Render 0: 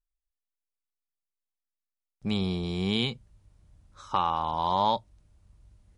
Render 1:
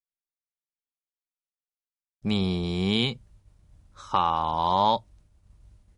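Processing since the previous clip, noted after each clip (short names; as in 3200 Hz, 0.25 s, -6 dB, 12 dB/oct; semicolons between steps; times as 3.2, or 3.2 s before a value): expander -55 dBFS; gain +3 dB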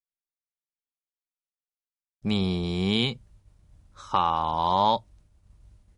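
nothing audible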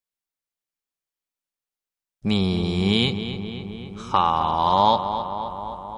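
darkening echo 0.263 s, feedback 72%, low-pass 3600 Hz, level -9.5 dB; gain +4 dB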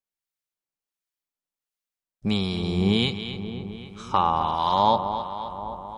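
harmonic tremolo 1.4 Hz, depth 50%, crossover 1100 Hz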